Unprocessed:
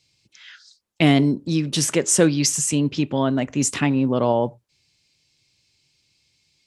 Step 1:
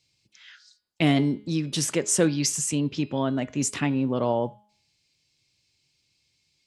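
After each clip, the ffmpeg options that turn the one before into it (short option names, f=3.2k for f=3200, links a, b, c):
-af "bandreject=f=209.1:t=h:w=4,bandreject=f=418.2:t=h:w=4,bandreject=f=627.3:t=h:w=4,bandreject=f=836.4:t=h:w=4,bandreject=f=1.0455k:t=h:w=4,bandreject=f=1.2546k:t=h:w=4,bandreject=f=1.4637k:t=h:w=4,bandreject=f=1.6728k:t=h:w=4,bandreject=f=1.8819k:t=h:w=4,bandreject=f=2.091k:t=h:w=4,bandreject=f=2.3001k:t=h:w=4,bandreject=f=2.5092k:t=h:w=4,bandreject=f=2.7183k:t=h:w=4,bandreject=f=2.9274k:t=h:w=4,bandreject=f=3.1365k:t=h:w=4,bandreject=f=3.3456k:t=h:w=4,bandreject=f=3.5547k:t=h:w=4,bandreject=f=3.7638k:t=h:w=4,bandreject=f=3.9729k:t=h:w=4,bandreject=f=4.182k:t=h:w=4,bandreject=f=4.3911k:t=h:w=4,bandreject=f=4.6002k:t=h:w=4,bandreject=f=4.8093k:t=h:w=4,bandreject=f=5.0184k:t=h:w=4,volume=-5dB"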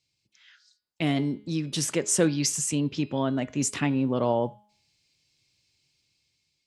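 -af "dynaudnorm=f=540:g=5:m=8dB,volume=-7dB"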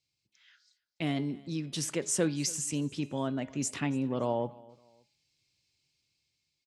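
-af "aecho=1:1:284|568:0.0708|0.0227,volume=-6dB"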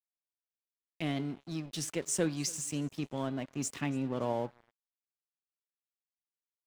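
-af "aeval=exprs='sgn(val(0))*max(abs(val(0))-0.00501,0)':c=same,volume=-1.5dB"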